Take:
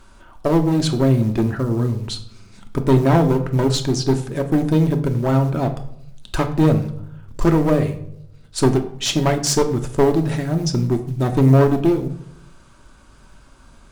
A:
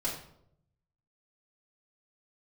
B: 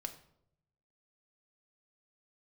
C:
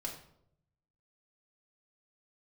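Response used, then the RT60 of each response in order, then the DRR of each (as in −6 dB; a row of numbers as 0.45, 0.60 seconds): B; 0.70, 0.75, 0.70 seconds; −8.0, 5.0, −2.5 decibels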